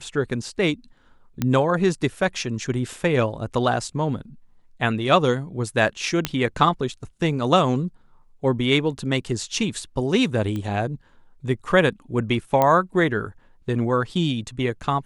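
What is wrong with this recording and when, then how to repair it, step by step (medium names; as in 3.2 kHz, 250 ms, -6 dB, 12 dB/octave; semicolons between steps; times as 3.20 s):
1.42 s: pop -9 dBFS
6.25 s: pop -6 dBFS
10.56 s: pop -18 dBFS
12.62 s: pop -7 dBFS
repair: de-click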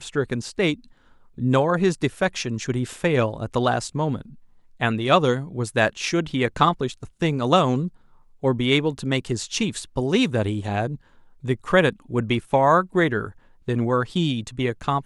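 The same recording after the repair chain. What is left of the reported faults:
nothing left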